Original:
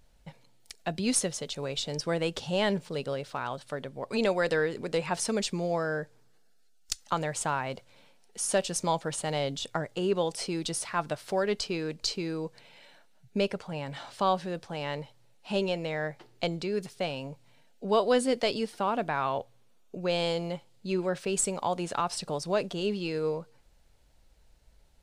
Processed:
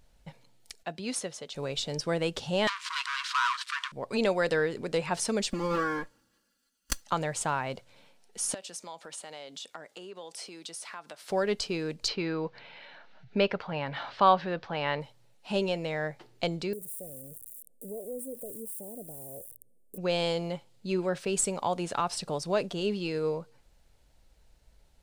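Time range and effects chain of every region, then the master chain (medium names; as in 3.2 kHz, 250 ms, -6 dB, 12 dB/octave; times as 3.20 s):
0.83–1.55 s: high-pass 1 kHz 6 dB/octave + tilt EQ -2.5 dB/octave
2.67–3.92 s: waveshaping leveller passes 5 + brick-wall FIR high-pass 940 Hz + distance through air 76 m
5.51–7.02 s: comb filter that takes the minimum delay 0.65 ms + comb 3.6 ms, depth 86%
8.54–11.30 s: high-pass 180 Hz 24 dB/octave + compression 3:1, threshold -39 dBFS + bass shelf 440 Hz -10.5 dB
12.08–15.01 s: low-pass 4.7 kHz 24 dB/octave + peaking EQ 1.4 kHz +7.5 dB 2.1 oct + upward compressor, threshold -44 dBFS
16.73–19.98 s: zero-crossing glitches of -19.5 dBFS + elliptic band-stop 540–9000 Hz + compression 2:1, threshold -46 dBFS
whole clip: none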